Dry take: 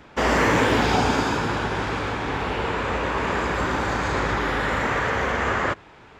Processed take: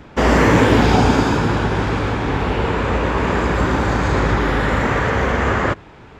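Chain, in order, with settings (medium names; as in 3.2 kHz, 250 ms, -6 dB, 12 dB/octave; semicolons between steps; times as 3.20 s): bass shelf 410 Hz +8.5 dB; trim +2.5 dB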